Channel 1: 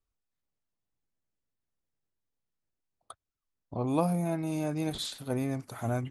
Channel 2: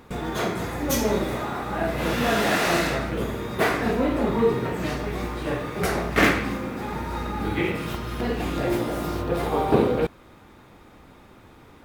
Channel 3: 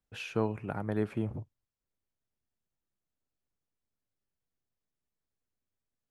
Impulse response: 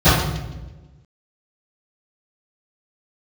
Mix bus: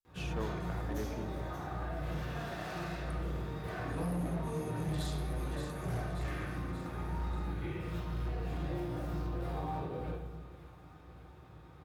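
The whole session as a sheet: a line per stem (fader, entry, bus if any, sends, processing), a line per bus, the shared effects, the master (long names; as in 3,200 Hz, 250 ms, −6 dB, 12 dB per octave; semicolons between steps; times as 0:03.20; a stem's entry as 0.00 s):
−16.0 dB, 0.00 s, send −24 dB, echo send −7 dB, high-shelf EQ 4,100 Hz +10.5 dB
−15.5 dB, 0.05 s, send −19.5 dB, echo send −10.5 dB, downward compressor 2 to 1, threshold −33 dBFS, peak gain reduction 11 dB; brickwall limiter −23 dBFS, peak gain reduction 7 dB
−5.5 dB, 0.00 s, no send, no echo send, multiband upward and downward expander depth 40%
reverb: on, RT60 1.1 s, pre-delay 3 ms
echo: repeating echo 582 ms, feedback 58%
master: low-shelf EQ 480 Hz −7 dB; gain into a clipping stage and back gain 30.5 dB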